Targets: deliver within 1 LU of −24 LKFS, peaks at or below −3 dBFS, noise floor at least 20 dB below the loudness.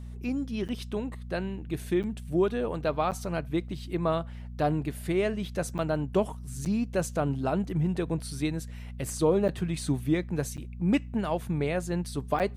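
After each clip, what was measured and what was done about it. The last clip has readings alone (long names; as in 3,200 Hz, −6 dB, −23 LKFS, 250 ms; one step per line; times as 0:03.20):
number of dropouts 8; longest dropout 8.3 ms; mains hum 60 Hz; hum harmonics up to 240 Hz; level of the hum −38 dBFS; integrated loudness −30.0 LKFS; sample peak −13.0 dBFS; target loudness −24.0 LKFS
→ repair the gap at 0:00.68/0:02.03/0:03.11/0:05.78/0:06.65/0:09.48/0:10.57/0:12.39, 8.3 ms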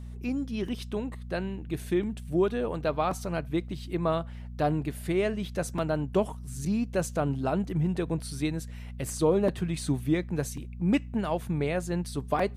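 number of dropouts 0; mains hum 60 Hz; hum harmonics up to 240 Hz; level of the hum −38 dBFS
→ hum removal 60 Hz, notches 4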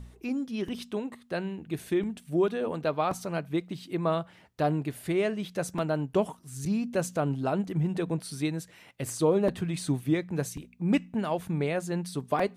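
mains hum none found; integrated loudness −30.5 LKFS; sample peak −13.0 dBFS; target loudness −24.0 LKFS
→ level +6.5 dB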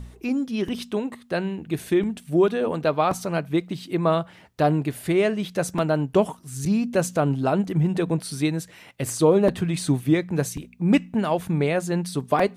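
integrated loudness −24.0 LKFS; sample peak −6.5 dBFS; background noise floor −50 dBFS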